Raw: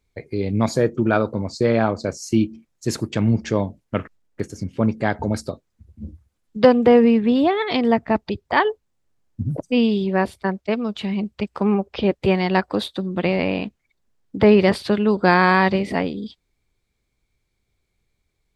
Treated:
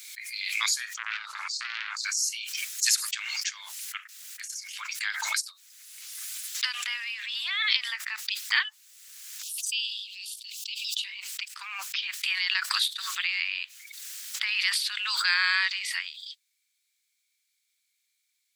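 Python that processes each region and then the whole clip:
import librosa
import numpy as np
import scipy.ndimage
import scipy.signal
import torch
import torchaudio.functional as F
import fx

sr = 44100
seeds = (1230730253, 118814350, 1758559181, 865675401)

y = fx.chain(x, sr, fx.air_absorb(metres=68.0),
    fx.transformer_sat(knee_hz=1400.0), at=(0.94, 1.97))
y = fx.chain(y, sr, fx.steep_highpass(hz=2700.0, slope=72),
    fx.sustainer(db_per_s=120.0), at=(9.42, 11.04))
y = scipy.signal.sosfilt(scipy.signal.bessel(8, 2600.0, 'highpass', norm='mag', fs=sr, output='sos'), y)
y = fx.high_shelf(y, sr, hz=4900.0, db=8.5)
y = fx.pre_swell(y, sr, db_per_s=31.0)
y = y * librosa.db_to_amplitude(2.0)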